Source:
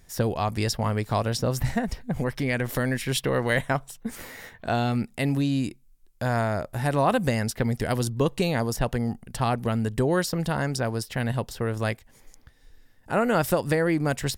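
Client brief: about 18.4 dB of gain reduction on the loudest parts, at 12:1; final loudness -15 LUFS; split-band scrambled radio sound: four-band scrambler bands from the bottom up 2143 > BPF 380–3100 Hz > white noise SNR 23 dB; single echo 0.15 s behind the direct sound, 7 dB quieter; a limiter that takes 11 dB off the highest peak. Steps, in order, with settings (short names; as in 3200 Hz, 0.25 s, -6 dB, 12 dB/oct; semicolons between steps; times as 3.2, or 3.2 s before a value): compressor 12:1, threshold -37 dBFS; limiter -31 dBFS; echo 0.15 s -7 dB; four-band scrambler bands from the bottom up 2143; BPF 380–3100 Hz; white noise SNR 23 dB; gain +26 dB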